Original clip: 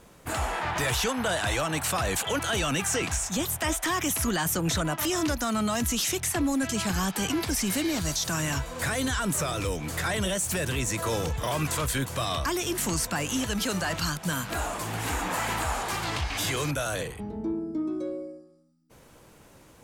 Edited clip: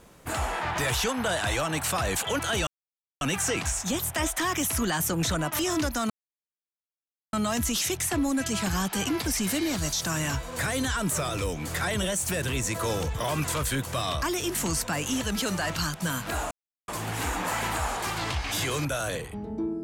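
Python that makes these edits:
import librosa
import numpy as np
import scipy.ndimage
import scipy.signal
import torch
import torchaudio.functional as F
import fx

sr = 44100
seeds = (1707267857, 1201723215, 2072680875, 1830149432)

y = fx.edit(x, sr, fx.insert_silence(at_s=2.67, length_s=0.54),
    fx.insert_silence(at_s=5.56, length_s=1.23),
    fx.insert_silence(at_s=14.74, length_s=0.37), tone=tone)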